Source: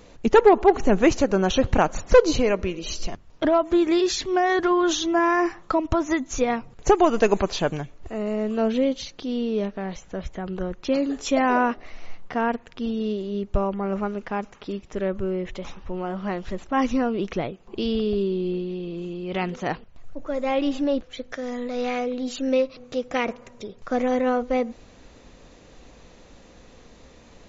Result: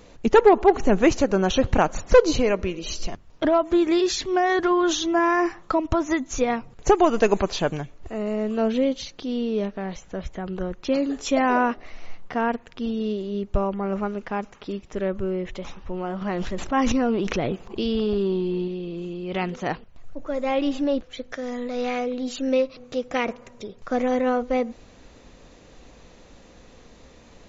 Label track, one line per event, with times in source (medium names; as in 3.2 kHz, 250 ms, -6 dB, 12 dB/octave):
16.210000	18.680000	transient shaper attack +1 dB, sustain +12 dB